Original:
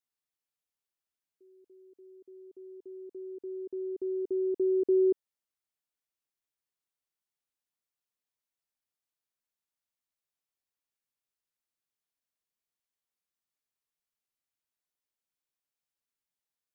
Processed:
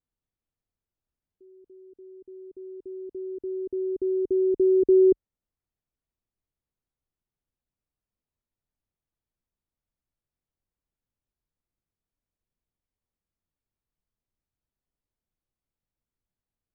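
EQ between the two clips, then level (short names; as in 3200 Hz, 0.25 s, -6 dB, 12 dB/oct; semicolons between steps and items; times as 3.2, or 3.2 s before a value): tilt -5 dB/oct; 0.0 dB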